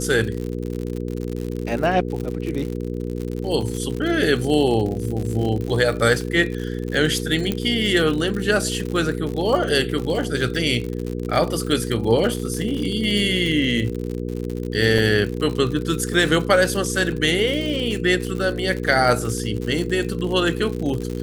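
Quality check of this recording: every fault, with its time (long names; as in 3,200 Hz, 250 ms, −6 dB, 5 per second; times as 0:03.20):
surface crackle 82 per second −26 dBFS
mains hum 60 Hz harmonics 8 −27 dBFS
0:07.52: click −9 dBFS
0:14.98: drop-out 4.2 ms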